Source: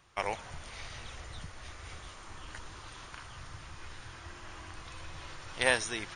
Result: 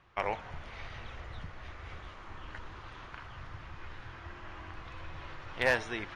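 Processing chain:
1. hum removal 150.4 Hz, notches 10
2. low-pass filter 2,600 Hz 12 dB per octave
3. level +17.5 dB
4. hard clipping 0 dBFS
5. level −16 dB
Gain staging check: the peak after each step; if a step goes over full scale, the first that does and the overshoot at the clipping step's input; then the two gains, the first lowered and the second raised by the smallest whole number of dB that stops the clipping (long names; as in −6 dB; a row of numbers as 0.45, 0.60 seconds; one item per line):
−8.5, −10.5, +7.0, 0.0, −16.0 dBFS
step 3, 7.0 dB
step 3 +10.5 dB, step 5 −9 dB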